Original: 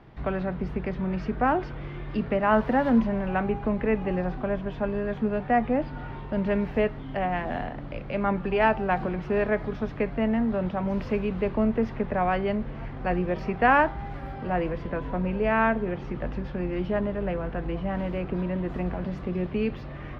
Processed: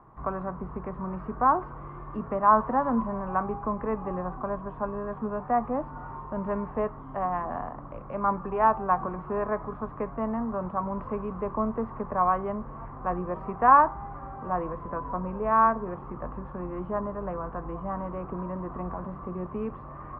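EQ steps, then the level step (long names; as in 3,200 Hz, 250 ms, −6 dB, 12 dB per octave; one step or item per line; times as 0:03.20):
low-pass with resonance 1,100 Hz, resonance Q 7.5
−6.5 dB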